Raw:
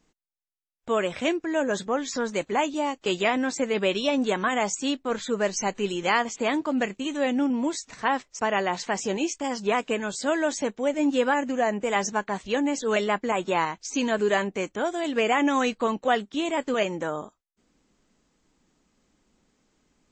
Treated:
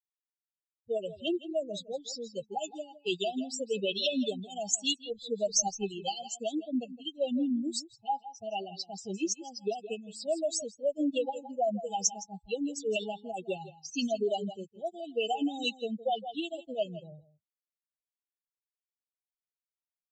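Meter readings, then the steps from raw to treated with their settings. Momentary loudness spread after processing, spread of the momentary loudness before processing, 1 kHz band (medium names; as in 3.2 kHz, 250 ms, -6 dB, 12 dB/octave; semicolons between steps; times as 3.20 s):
9 LU, 5 LU, -10.0 dB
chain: expander on every frequency bin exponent 3; delay 164 ms -16.5 dB; level-controlled noise filter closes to 2.3 kHz, open at -28 dBFS; peak limiter -24.5 dBFS, peak gain reduction 9 dB; FFT band-reject 830–2600 Hz; tilt EQ +2 dB/octave; trim +5 dB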